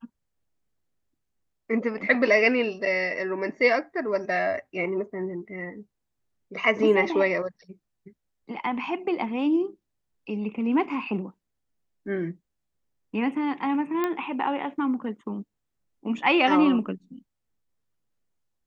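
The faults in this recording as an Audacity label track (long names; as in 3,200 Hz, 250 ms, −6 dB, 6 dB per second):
14.040000	14.040000	click −14 dBFS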